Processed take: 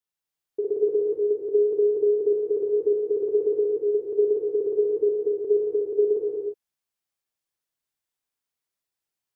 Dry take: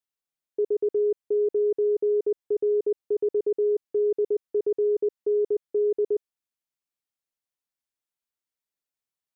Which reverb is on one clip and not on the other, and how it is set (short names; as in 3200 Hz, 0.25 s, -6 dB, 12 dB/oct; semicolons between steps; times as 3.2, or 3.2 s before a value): non-linear reverb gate 0.38 s flat, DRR -4.5 dB; gain -2 dB